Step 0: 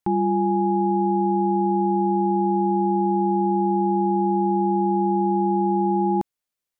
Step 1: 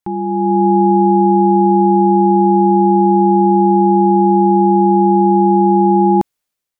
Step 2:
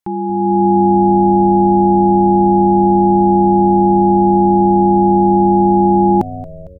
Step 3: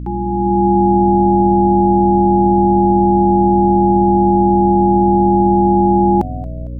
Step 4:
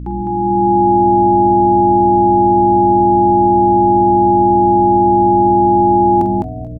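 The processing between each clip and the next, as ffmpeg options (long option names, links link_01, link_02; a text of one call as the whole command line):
ffmpeg -i in.wav -af "dynaudnorm=framelen=130:gausssize=7:maxgain=11.5dB" out.wav
ffmpeg -i in.wav -filter_complex "[0:a]asplit=6[link_01][link_02][link_03][link_04][link_05][link_06];[link_02]adelay=227,afreqshift=-94,volume=-16dB[link_07];[link_03]adelay=454,afreqshift=-188,volume=-21.8dB[link_08];[link_04]adelay=681,afreqshift=-282,volume=-27.7dB[link_09];[link_05]adelay=908,afreqshift=-376,volume=-33.5dB[link_10];[link_06]adelay=1135,afreqshift=-470,volume=-39.4dB[link_11];[link_01][link_07][link_08][link_09][link_10][link_11]amix=inputs=6:normalize=0" out.wav
ffmpeg -i in.wav -af "aeval=exprs='val(0)+0.0708*(sin(2*PI*60*n/s)+sin(2*PI*2*60*n/s)/2+sin(2*PI*3*60*n/s)/3+sin(2*PI*4*60*n/s)/4+sin(2*PI*5*60*n/s)/5)':channel_layout=same,volume=-1dB" out.wav
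ffmpeg -i in.wav -af "aecho=1:1:46.65|207:0.282|0.708,volume=-1dB" out.wav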